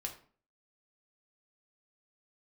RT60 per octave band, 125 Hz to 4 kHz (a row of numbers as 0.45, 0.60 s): 0.50, 0.50, 0.45, 0.45, 0.40, 0.30 s